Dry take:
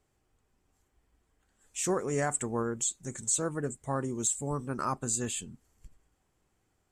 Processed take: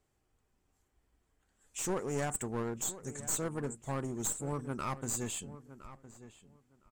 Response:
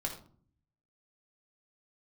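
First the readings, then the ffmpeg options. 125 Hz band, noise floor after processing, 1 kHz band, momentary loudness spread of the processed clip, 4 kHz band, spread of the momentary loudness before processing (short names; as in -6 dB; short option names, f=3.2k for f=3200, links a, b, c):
-2.5 dB, -77 dBFS, -5.0 dB, 18 LU, -4.0 dB, 6 LU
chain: -filter_complex "[0:a]aeval=exprs='clip(val(0),-1,0.0224)':c=same,asplit=2[a][b];[b]adelay=1012,lowpass=f=2.5k:p=1,volume=-14.5dB,asplit=2[c][d];[d]adelay=1012,lowpass=f=2.5k:p=1,volume=0.17[e];[c][e]amix=inputs=2:normalize=0[f];[a][f]amix=inputs=2:normalize=0,volume=-3dB"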